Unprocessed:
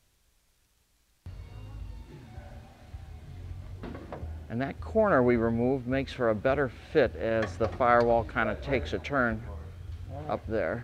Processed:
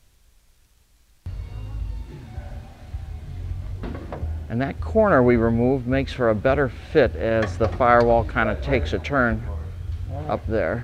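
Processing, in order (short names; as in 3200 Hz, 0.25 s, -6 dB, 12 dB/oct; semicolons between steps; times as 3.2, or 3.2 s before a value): low shelf 81 Hz +8.5 dB; gain +6.5 dB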